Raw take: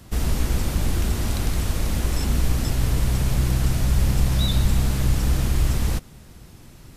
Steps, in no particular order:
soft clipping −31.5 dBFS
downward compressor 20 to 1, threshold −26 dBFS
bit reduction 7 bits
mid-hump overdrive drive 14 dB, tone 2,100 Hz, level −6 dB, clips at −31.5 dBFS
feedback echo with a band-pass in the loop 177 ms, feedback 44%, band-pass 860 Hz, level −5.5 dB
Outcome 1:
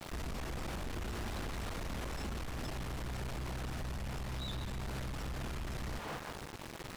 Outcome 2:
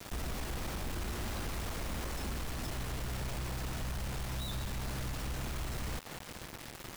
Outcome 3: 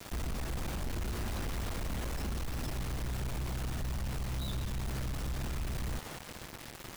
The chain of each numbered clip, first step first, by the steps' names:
feedback echo with a band-pass in the loop, then bit reduction, then downward compressor, then soft clipping, then mid-hump overdrive
downward compressor, then mid-hump overdrive, then feedback echo with a band-pass in the loop, then bit reduction, then soft clipping
mid-hump overdrive, then downward compressor, then feedback echo with a band-pass in the loop, then bit reduction, then soft clipping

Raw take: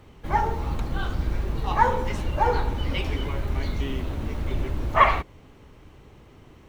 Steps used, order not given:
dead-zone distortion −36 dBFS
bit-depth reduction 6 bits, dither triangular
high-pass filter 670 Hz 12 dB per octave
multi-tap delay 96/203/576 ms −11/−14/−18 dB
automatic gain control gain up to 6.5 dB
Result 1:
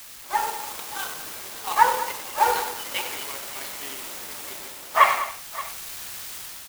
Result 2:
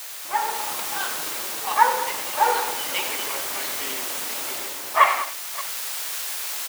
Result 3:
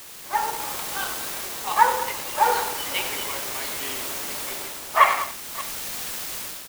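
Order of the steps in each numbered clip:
bit-depth reduction, then high-pass filter, then dead-zone distortion, then automatic gain control, then multi-tap delay
multi-tap delay, then dead-zone distortion, then bit-depth reduction, then high-pass filter, then automatic gain control
high-pass filter, then bit-depth reduction, then automatic gain control, then multi-tap delay, then dead-zone distortion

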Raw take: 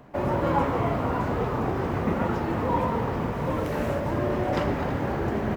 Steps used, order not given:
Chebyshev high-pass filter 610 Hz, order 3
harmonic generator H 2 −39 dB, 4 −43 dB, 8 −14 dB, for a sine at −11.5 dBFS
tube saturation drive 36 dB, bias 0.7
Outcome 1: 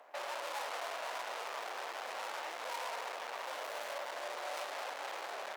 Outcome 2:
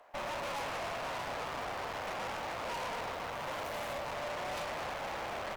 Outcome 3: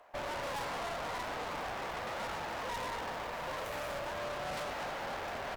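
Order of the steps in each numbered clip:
harmonic generator, then tube saturation, then Chebyshev high-pass filter
harmonic generator, then Chebyshev high-pass filter, then tube saturation
Chebyshev high-pass filter, then harmonic generator, then tube saturation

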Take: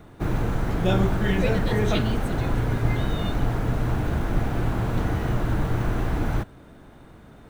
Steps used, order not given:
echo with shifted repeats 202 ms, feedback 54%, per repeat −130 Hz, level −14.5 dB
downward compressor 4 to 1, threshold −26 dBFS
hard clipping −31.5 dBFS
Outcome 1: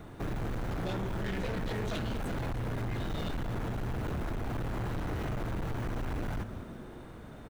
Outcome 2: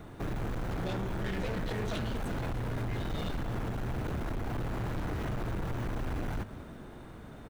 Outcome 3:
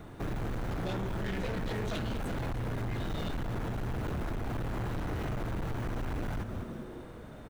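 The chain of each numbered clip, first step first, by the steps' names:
downward compressor, then echo with shifted repeats, then hard clipping
downward compressor, then hard clipping, then echo with shifted repeats
echo with shifted repeats, then downward compressor, then hard clipping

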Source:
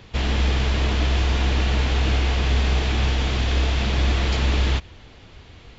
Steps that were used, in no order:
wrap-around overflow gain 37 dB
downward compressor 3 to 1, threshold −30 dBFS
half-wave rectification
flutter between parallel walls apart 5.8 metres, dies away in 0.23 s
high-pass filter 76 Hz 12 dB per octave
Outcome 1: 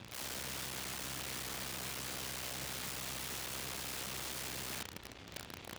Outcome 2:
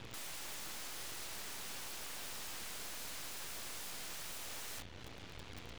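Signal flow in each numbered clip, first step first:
half-wave rectification, then flutter between parallel walls, then downward compressor, then wrap-around overflow, then high-pass filter
flutter between parallel walls, then downward compressor, then high-pass filter, then wrap-around overflow, then half-wave rectification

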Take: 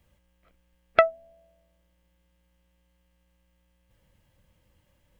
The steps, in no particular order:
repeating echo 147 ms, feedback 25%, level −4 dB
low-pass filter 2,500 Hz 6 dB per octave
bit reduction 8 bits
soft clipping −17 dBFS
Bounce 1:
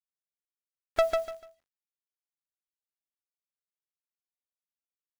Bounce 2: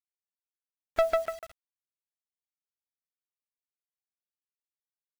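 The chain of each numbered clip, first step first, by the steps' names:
low-pass filter, then soft clipping, then bit reduction, then repeating echo
repeating echo, then soft clipping, then low-pass filter, then bit reduction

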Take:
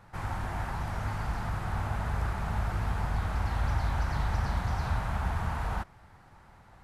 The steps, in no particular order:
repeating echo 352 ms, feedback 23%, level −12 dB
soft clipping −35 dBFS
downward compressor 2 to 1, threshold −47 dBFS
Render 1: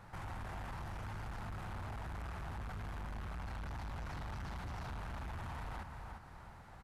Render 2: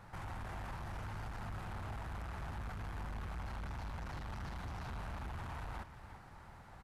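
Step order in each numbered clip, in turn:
repeating echo, then soft clipping, then downward compressor
soft clipping, then downward compressor, then repeating echo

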